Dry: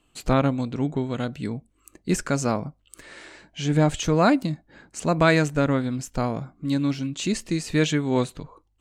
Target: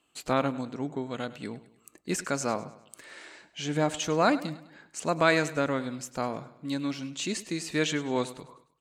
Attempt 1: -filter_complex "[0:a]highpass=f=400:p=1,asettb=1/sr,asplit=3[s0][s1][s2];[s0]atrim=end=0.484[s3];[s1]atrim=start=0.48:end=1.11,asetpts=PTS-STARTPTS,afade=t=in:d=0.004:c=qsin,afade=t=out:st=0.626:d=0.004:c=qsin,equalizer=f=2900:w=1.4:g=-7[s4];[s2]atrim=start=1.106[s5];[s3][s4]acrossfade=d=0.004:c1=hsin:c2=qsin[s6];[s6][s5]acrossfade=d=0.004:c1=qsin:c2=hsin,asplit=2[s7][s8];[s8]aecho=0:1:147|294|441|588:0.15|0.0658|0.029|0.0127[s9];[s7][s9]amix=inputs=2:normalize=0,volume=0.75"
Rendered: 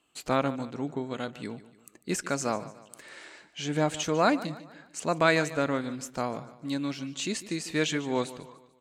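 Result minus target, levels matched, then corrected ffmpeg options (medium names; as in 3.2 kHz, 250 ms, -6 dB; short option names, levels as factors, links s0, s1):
echo 45 ms late
-filter_complex "[0:a]highpass=f=400:p=1,asettb=1/sr,asplit=3[s0][s1][s2];[s0]atrim=end=0.484[s3];[s1]atrim=start=0.48:end=1.11,asetpts=PTS-STARTPTS,afade=t=in:d=0.004:c=qsin,afade=t=out:st=0.626:d=0.004:c=qsin,equalizer=f=2900:w=1.4:g=-7[s4];[s2]atrim=start=1.106[s5];[s3][s4]acrossfade=d=0.004:c1=hsin:c2=qsin[s6];[s6][s5]acrossfade=d=0.004:c1=qsin:c2=hsin,asplit=2[s7][s8];[s8]aecho=0:1:102|204|306|408:0.15|0.0658|0.029|0.0127[s9];[s7][s9]amix=inputs=2:normalize=0,volume=0.75"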